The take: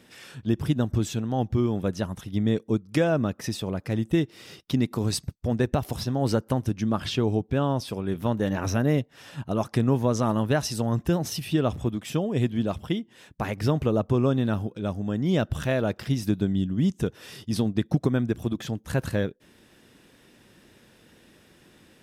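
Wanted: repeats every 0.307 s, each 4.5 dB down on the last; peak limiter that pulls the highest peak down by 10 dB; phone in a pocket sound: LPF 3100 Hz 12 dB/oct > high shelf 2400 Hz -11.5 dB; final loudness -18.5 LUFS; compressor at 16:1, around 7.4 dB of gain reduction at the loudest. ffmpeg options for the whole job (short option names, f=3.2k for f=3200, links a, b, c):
-af "acompressor=threshold=-25dB:ratio=16,alimiter=level_in=1dB:limit=-24dB:level=0:latency=1,volume=-1dB,lowpass=3.1k,highshelf=f=2.4k:g=-11.5,aecho=1:1:307|614|921|1228|1535|1842|2149|2456|2763:0.596|0.357|0.214|0.129|0.0772|0.0463|0.0278|0.0167|0.01,volume=16dB"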